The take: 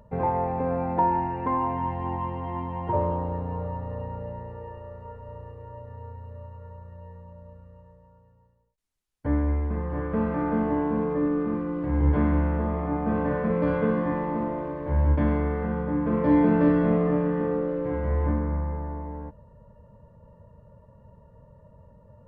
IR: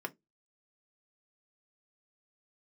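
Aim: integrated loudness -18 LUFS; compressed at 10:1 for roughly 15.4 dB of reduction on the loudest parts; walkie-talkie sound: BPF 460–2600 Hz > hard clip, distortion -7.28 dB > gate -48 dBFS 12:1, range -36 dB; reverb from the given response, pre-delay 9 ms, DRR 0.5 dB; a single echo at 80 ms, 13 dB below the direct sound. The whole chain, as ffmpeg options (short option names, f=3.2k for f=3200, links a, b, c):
-filter_complex "[0:a]acompressor=threshold=-32dB:ratio=10,aecho=1:1:80:0.224,asplit=2[a][b];[1:a]atrim=start_sample=2205,adelay=9[c];[b][c]afir=irnorm=-1:irlink=0,volume=-2.5dB[d];[a][d]amix=inputs=2:normalize=0,highpass=460,lowpass=2.6k,asoftclip=type=hard:threshold=-39.5dB,agate=range=-36dB:threshold=-48dB:ratio=12,volume=25dB"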